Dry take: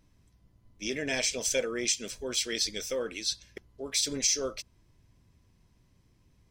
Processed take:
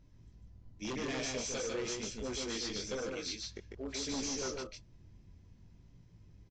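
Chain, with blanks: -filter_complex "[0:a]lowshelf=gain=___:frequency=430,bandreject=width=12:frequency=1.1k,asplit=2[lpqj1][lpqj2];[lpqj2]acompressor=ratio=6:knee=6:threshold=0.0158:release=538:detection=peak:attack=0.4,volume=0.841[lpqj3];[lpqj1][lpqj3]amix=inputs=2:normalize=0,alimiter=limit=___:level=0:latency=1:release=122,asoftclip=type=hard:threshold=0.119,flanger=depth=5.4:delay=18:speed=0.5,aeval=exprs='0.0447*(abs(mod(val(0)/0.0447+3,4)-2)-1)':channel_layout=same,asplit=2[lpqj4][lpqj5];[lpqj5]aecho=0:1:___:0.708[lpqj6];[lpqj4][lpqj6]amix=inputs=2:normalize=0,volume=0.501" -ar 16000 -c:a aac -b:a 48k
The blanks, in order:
9, 0.168, 148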